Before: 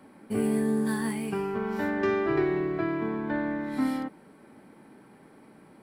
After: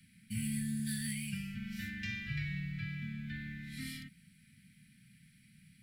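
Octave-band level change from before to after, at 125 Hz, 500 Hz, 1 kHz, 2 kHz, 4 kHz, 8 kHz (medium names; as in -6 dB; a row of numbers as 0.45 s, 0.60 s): -1.0 dB, under -40 dB, under -30 dB, -7.0 dB, +1.0 dB, no reading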